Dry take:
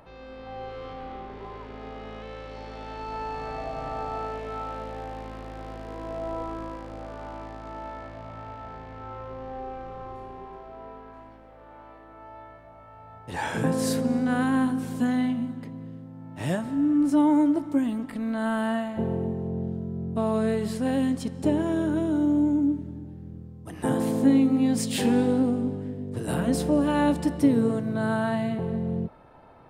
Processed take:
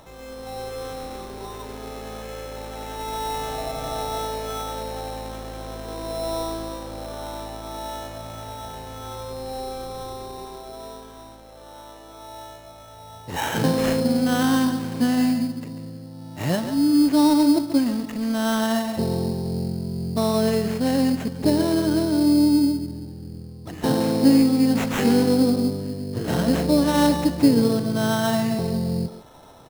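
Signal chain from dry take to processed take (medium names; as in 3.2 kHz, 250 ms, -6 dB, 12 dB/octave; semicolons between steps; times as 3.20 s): speakerphone echo 140 ms, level -9 dB; sample-rate reducer 4.7 kHz, jitter 0%; trim +4 dB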